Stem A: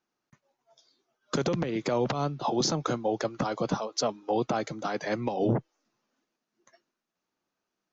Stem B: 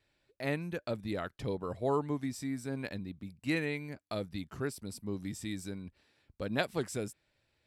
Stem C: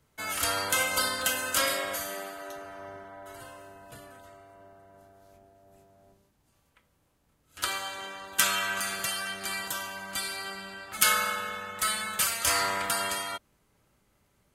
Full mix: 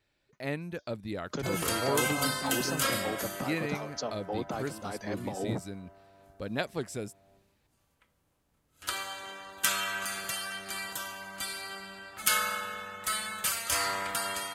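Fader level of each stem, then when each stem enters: -7.5, -0.5, -3.5 dB; 0.00, 0.00, 1.25 s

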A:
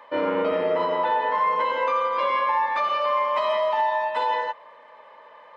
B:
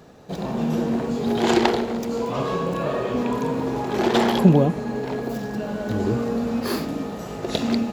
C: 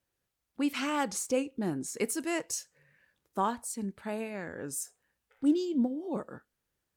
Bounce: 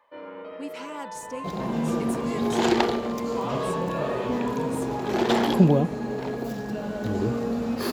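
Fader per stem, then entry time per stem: -16.0, -3.0, -7.5 dB; 0.00, 1.15, 0.00 s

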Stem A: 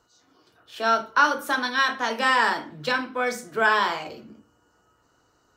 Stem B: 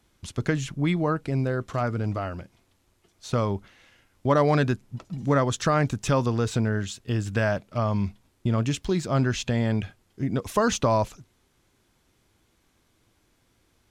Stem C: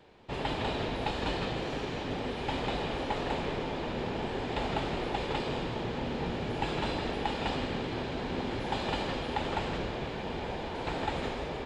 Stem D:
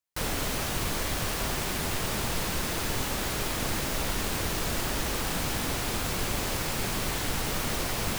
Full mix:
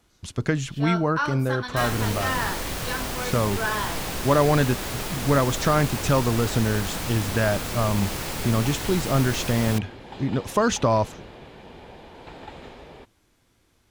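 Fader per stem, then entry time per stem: -7.5, +1.5, -8.0, -0.5 dB; 0.00, 0.00, 1.40, 1.60 s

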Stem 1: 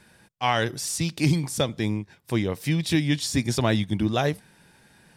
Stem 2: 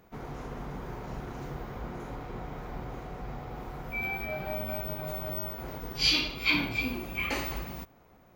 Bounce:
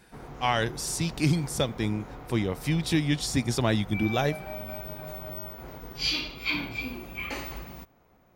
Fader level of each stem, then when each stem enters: -2.5, -3.0 dB; 0.00, 0.00 s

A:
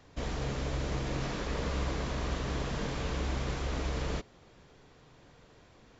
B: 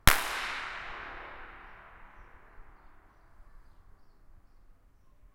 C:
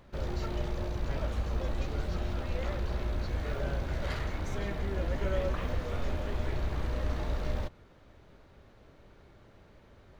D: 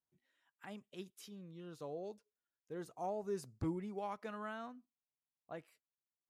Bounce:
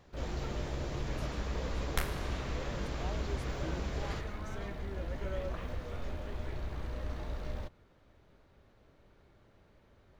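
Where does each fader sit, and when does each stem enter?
-6.0, -15.0, -6.5, -5.0 dB; 0.00, 1.90, 0.00, 0.00 s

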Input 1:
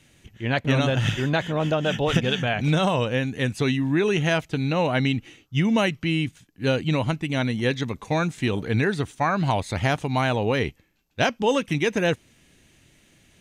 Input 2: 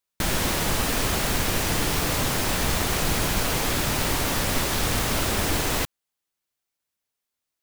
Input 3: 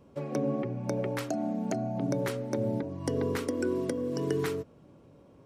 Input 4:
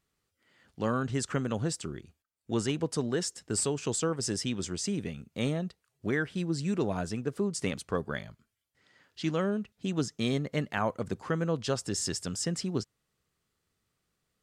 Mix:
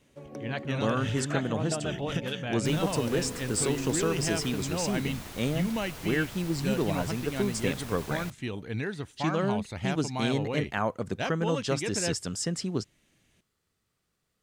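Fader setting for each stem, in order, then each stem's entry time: -10.5, -18.5, -10.0, +1.0 dB; 0.00, 2.45, 0.00, 0.00 s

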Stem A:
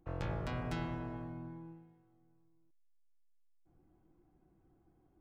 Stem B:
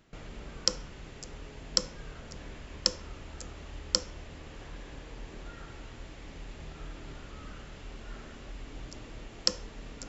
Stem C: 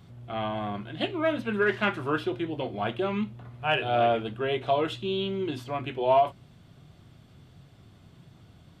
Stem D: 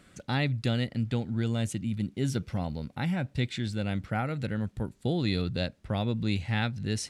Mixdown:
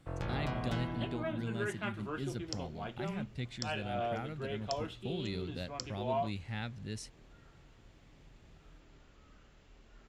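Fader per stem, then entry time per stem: +0.5, -15.5, -13.0, -11.0 dB; 0.00, 1.85, 0.00, 0.00 s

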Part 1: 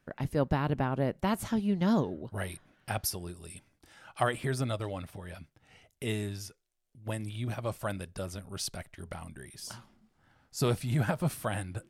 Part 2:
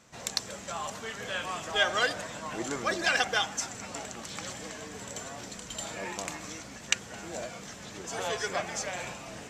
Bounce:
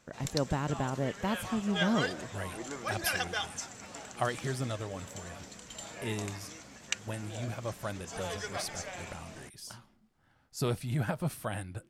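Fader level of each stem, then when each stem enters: -3.0, -6.5 dB; 0.00, 0.00 s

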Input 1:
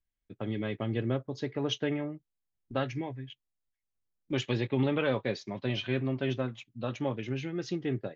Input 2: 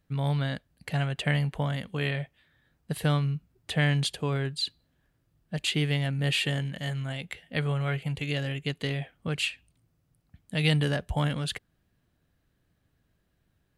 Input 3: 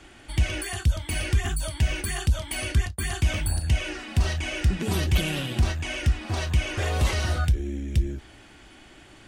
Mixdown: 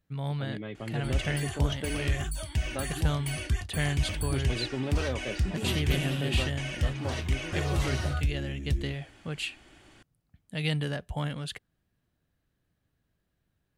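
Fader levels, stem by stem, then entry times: -5.0, -5.0, -6.0 dB; 0.00, 0.00, 0.75 s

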